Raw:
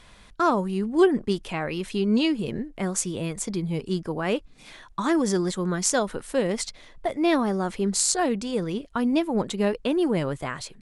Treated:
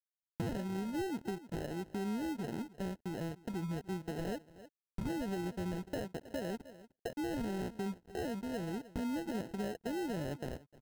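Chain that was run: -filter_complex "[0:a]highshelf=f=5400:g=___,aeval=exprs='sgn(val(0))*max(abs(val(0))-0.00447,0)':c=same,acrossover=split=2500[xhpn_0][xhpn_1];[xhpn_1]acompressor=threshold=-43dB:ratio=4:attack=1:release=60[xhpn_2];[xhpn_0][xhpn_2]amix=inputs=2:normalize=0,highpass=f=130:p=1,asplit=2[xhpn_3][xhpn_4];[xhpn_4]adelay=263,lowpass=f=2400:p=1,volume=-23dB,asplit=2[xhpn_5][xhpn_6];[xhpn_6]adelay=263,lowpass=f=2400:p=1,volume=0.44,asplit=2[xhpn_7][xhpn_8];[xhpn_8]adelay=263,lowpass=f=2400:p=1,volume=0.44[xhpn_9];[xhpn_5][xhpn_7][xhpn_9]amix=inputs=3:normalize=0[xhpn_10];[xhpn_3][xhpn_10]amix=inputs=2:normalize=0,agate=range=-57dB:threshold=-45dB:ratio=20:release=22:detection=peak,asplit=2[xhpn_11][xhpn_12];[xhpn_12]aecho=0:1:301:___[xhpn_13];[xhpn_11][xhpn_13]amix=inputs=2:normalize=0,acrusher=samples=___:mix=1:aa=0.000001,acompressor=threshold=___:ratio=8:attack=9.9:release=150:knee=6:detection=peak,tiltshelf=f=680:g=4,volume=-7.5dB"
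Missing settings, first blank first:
-11, 0.0708, 38, -29dB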